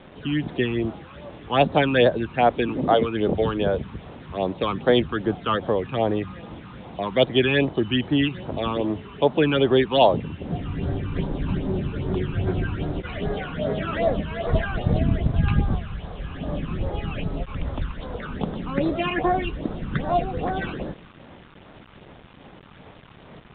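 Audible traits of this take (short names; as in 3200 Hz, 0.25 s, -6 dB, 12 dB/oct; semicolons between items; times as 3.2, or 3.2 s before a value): phasing stages 12, 2.5 Hz, lowest notch 580–2800 Hz; a quantiser's noise floor 8-bit, dither none; µ-law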